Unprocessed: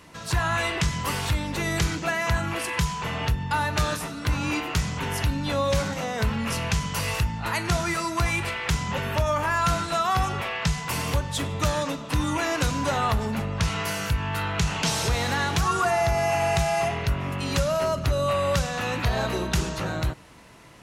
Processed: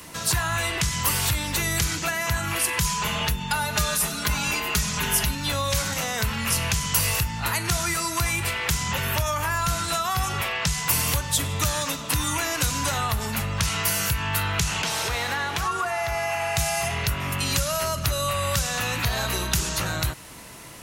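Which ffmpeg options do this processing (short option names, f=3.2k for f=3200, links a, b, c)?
-filter_complex "[0:a]asettb=1/sr,asplit=3[a][b][c];[a]atrim=end=2.844[d];[b]atrim=start=2.84:end=5.35,asetpts=PTS-STARTPTS,afade=t=in:d=0.004:c=qsin,afade=t=out:st=2.506:d=0.004:c=qsin,aecho=1:1:4.8:0.94,atrim=end_sample=110691[e];[c]atrim=start=5.346[f];[d][e]acrossfade=d=0.004:c1=hsin:c2=qsin[g];[g][f]acrossfade=d=0.004:c1=qsin:c2=hsin,asettb=1/sr,asplit=3[h][i][j];[h]atrim=end=14.824[k];[i]atrim=start=14.82:end=16.57,asetpts=PTS-STARTPTS,afade=t=in:d=0.004:c=qsin,afade=t=out:st=1.746:d=0.004:c=qsin,bass=f=250:g=-11,treble=f=4k:g=-12[l];[j]atrim=start=16.566[m];[k][l]acrossfade=d=0.004:c1=hsin:c2=qsin[n];[n][m]acrossfade=d=0.004:c1=qsin:c2=hsin,acrossover=split=120|940[o][p][q];[o]acompressor=threshold=-31dB:ratio=4[r];[p]acompressor=threshold=-40dB:ratio=4[s];[q]acompressor=threshold=-33dB:ratio=4[t];[r][s][t]amix=inputs=3:normalize=0,aemphasis=mode=production:type=50fm,volume=5.5dB"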